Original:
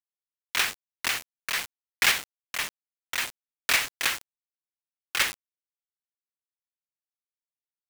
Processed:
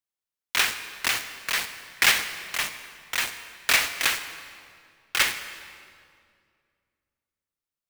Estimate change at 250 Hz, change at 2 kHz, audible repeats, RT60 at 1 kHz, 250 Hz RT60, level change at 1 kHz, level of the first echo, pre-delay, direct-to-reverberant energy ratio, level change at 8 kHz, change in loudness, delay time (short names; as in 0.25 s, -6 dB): +3.0 dB, +3.0 dB, none, 2.1 s, 2.7 s, +3.0 dB, none, 36 ms, 9.5 dB, +3.0 dB, +2.5 dB, none